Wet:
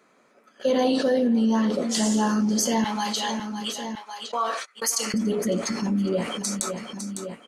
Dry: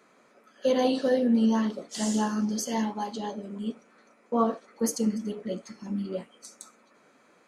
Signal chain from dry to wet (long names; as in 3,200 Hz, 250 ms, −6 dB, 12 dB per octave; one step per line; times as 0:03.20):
0:02.84–0:05.14: high-pass filter 1,500 Hz 12 dB per octave
noise gate −51 dBFS, range −40 dB
repeating echo 555 ms, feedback 30%, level −22 dB
envelope flattener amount 70%